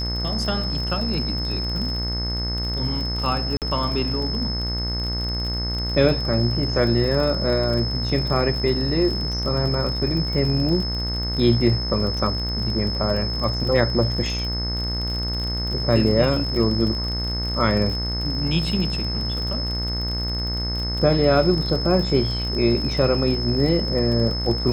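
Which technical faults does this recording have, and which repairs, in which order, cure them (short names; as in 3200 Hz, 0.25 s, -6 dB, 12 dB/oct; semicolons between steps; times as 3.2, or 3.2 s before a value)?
buzz 60 Hz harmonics 37 -27 dBFS
crackle 40/s -27 dBFS
tone 5200 Hz -27 dBFS
3.57–3.62 gap 48 ms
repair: de-click; de-hum 60 Hz, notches 37; notch 5200 Hz, Q 30; interpolate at 3.57, 48 ms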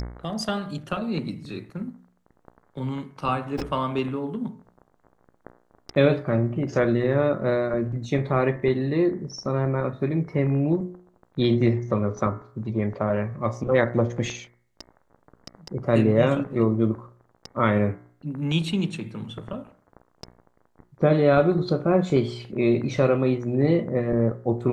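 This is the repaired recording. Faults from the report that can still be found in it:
none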